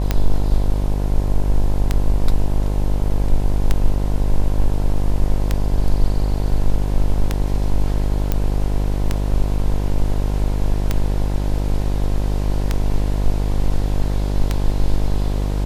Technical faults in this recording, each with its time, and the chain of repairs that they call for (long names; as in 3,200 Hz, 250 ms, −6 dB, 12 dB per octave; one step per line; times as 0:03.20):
mains buzz 50 Hz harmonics 21 −20 dBFS
scratch tick 33 1/3 rpm −4 dBFS
0:08.32: click −6 dBFS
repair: click removal
hum removal 50 Hz, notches 21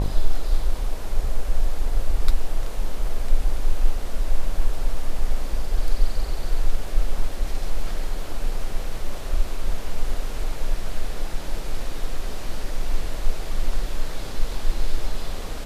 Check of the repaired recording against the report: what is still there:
none of them is left